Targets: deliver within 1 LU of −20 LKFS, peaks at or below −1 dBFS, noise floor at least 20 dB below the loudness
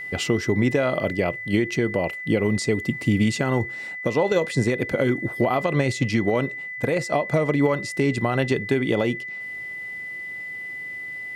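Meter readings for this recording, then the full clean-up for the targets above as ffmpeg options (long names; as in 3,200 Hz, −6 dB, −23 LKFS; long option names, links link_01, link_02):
interfering tone 2,000 Hz; level of the tone −31 dBFS; integrated loudness −23.5 LKFS; sample peak −8.5 dBFS; target loudness −20.0 LKFS
→ -af "bandreject=frequency=2000:width=30"
-af "volume=3.5dB"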